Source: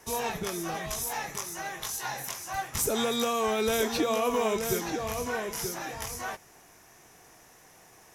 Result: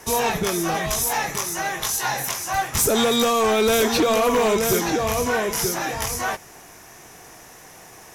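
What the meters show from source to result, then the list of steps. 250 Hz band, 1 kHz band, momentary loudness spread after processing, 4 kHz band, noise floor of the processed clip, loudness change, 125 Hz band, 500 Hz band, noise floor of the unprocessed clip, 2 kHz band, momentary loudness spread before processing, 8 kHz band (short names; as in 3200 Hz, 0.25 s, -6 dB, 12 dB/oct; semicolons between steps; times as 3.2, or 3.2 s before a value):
+9.0 dB, +9.5 dB, 7 LU, +9.5 dB, -45 dBFS, +9.5 dB, +10.0 dB, +9.0 dB, -56 dBFS, +9.5 dB, 9 LU, +9.5 dB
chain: sine folder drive 7 dB, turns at -14 dBFS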